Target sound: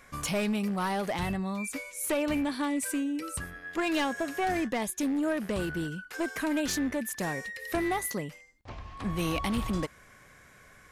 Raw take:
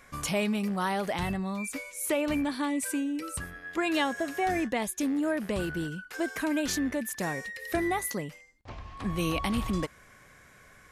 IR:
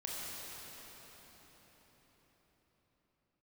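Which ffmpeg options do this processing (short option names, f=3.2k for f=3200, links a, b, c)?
-af "aeval=exprs='clip(val(0),-1,0.0473)':c=same"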